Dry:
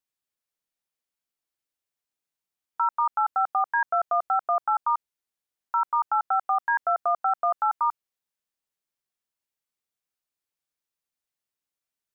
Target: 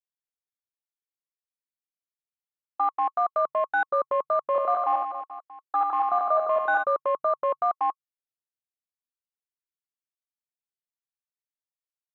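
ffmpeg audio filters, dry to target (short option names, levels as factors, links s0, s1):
-filter_complex "[0:a]afwtdn=0.0251,asplit=3[s0][s1][s2];[s0]afade=t=out:st=4.54:d=0.02[s3];[s1]aecho=1:1:70|161|279.3|433.1|633:0.631|0.398|0.251|0.158|0.1,afade=t=in:st=4.54:d=0.02,afade=t=out:st=6.82:d=0.02[s4];[s2]afade=t=in:st=6.82:d=0.02[s5];[s3][s4][s5]amix=inputs=3:normalize=0,afreqshift=-140,bandreject=f=1100:w=22"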